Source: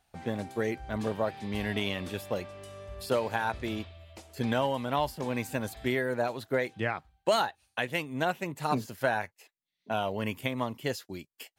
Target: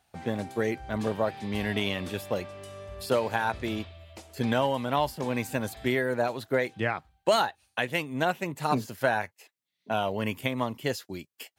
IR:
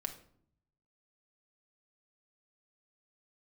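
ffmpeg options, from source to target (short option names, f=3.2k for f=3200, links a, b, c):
-af "highpass=59,volume=2.5dB"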